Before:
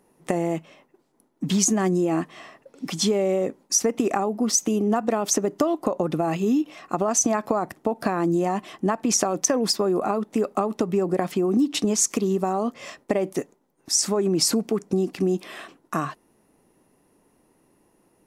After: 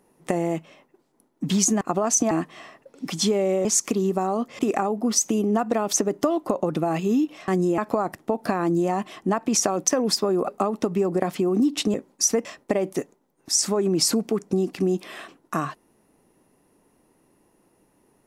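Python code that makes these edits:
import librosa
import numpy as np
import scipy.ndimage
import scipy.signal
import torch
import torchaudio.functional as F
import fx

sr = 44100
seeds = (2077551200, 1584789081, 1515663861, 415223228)

y = fx.edit(x, sr, fx.swap(start_s=1.81, length_s=0.3, other_s=6.85, other_length_s=0.5),
    fx.swap(start_s=3.45, length_s=0.51, other_s=11.91, other_length_s=0.94),
    fx.cut(start_s=10.05, length_s=0.4), tone=tone)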